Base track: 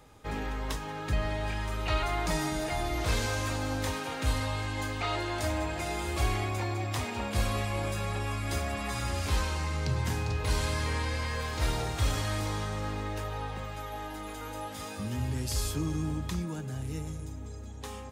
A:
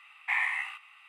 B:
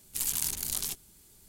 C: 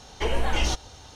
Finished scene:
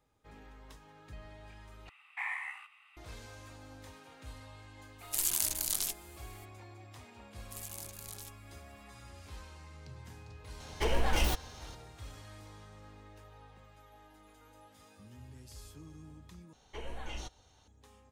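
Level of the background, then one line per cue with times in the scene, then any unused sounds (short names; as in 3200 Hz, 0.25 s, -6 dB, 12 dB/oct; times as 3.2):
base track -19.5 dB
1.89 replace with A -6.5 dB + dynamic EQ 3200 Hz, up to -6 dB, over -43 dBFS, Q 1.2
4.98 add B -0.5 dB, fades 0.02 s + bell 100 Hz -10.5 dB 2.9 oct
7.36 add B -15 dB
10.6 add C -4.5 dB + tracing distortion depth 0.14 ms
16.53 replace with C -17.5 dB + notch 5000 Hz, Q 6.2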